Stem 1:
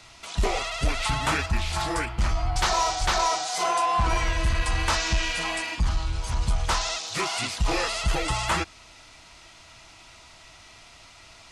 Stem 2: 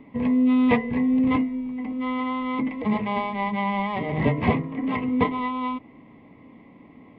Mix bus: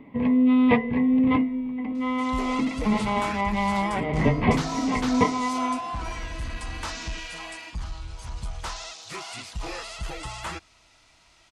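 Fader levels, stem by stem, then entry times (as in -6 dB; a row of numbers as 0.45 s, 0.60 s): -9.0 dB, +0.5 dB; 1.95 s, 0.00 s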